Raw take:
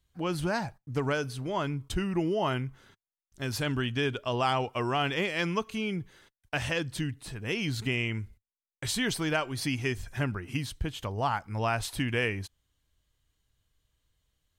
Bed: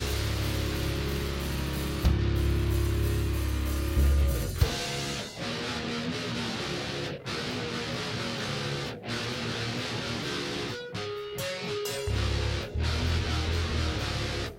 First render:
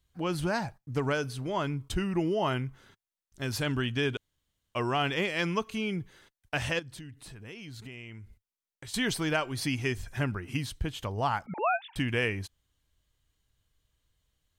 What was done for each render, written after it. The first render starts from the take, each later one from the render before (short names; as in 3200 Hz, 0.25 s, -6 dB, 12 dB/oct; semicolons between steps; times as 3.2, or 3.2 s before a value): 4.17–4.75 room tone; 6.79–8.94 compressor 3:1, threshold -45 dBFS; 11.46–11.96 sine-wave speech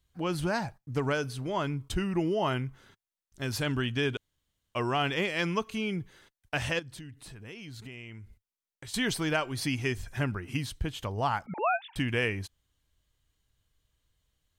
nothing audible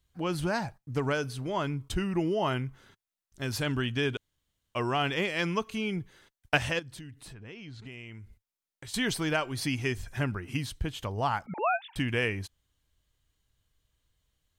5.84–6.61 transient shaper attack +8 dB, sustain -1 dB; 7.33–7.87 air absorption 110 m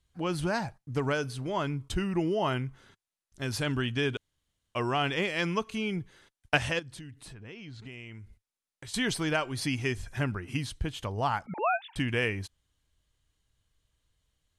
steep low-pass 12000 Hz 96 dB/oct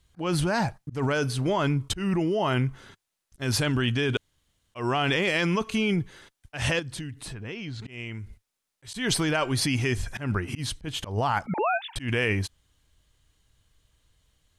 in parallel at +2 dB: negative-ratio compressor -32 dBFS, ratio -0.5; on the sum: auto swell 0.141 s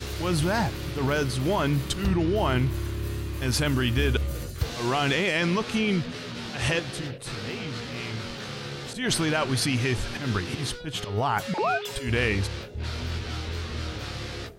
add bed -3.5 dB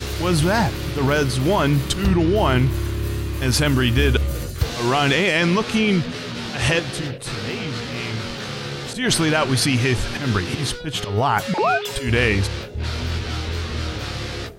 gain +6.5 dB